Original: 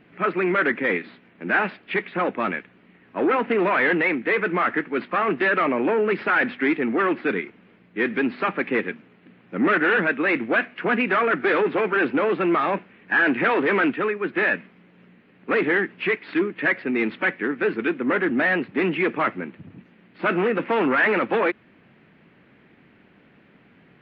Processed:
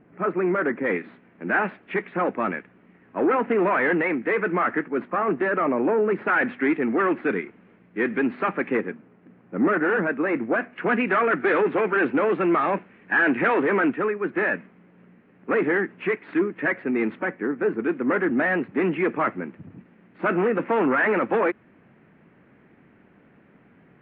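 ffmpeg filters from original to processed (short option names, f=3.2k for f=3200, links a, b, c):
-af "asetnsamples=n=441:p=0,asendcmd='0.86 lowpass f 1800;4.88 lowpass f 1300;6.27 lowpass f 2000;8.77 lowpass f 1300;10.73 lowpass f 2300;13.66 lowpass f 1700;17.19 lowpass f 1200;17.89 lowpass f 1800',lowpass=1.2k"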